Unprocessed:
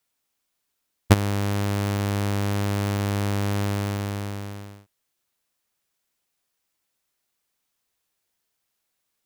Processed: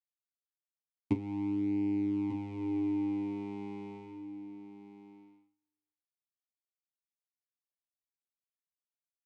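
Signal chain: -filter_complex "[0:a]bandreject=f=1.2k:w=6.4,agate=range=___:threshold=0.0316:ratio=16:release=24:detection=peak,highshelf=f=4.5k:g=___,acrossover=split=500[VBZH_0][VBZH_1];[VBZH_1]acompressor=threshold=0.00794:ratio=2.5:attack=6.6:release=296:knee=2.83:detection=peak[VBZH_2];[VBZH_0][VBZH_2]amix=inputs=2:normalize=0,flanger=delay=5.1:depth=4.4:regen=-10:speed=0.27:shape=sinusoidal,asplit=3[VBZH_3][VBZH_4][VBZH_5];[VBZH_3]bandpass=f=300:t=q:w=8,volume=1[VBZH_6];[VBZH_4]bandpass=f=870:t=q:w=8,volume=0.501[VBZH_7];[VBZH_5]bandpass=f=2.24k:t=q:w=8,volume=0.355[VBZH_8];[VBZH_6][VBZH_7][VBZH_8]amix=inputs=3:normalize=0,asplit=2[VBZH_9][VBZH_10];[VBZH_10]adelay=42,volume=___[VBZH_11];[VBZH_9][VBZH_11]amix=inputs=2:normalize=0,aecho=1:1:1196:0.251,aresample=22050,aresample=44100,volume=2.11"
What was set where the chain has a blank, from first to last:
0.01, 2.5, 0.224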